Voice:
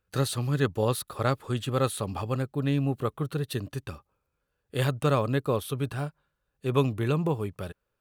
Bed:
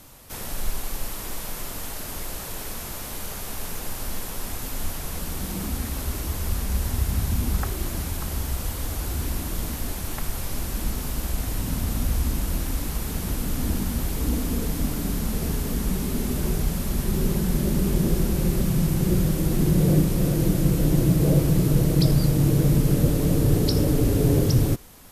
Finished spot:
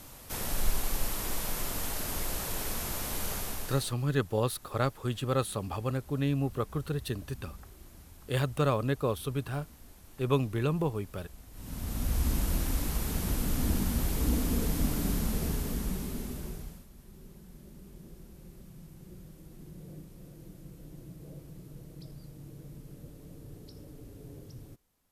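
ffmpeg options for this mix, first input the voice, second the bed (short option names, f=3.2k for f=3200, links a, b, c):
-filter_complex "[0:a]adelay=3550,volume=-3dB[a];[1:a]volume=19dB,afade=t=out:st=3.34:d=0.61:silence=0.0749894,afade=t=in:st=11.52:d=0.81:silence=0.1,afade=t=out:st=15.09:d=1.78:silence=0.0595662[b];[a][b]amix=inputs=2:normalize=0"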